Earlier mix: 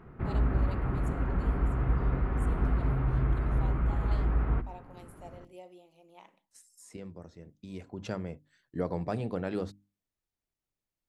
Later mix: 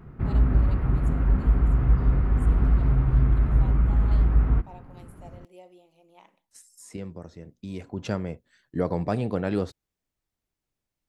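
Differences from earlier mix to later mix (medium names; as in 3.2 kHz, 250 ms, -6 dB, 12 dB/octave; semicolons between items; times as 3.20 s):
second voice +6.0 dB; background: add tone controls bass +6 dB, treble +8 dB; master: remove hum notches 50/100/150/200/250/300 Hz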